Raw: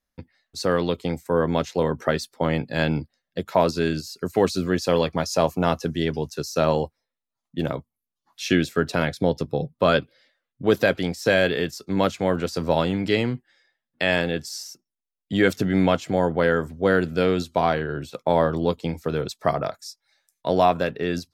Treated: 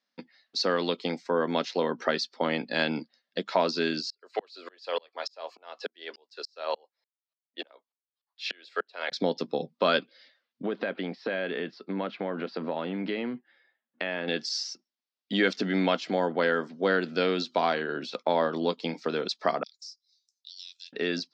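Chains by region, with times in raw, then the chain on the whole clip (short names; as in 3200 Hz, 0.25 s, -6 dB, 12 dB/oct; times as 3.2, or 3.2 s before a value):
4.1–9.12 HPF 450 Hz 24 dB/oct + bell 6000 Hz -11 dB 0.27 oct + dB-ramp tremolo swelling 3.4 Hz, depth 39 dB
10.66–14.28 compressor 3:1, threshold -24 dBFS + air absorption 450 m
19.63–20.93 inverse Chebyshev high-pass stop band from 870 Hz, stop band 80 dB + compressor, threshold -42 dBFS
whole clip: elliptic band-pass 210–4900 Hz, stop band 40 dB; high shelf 2300 Hz +9.5 dB; compressor 1.5:1, threshold -30 dBFS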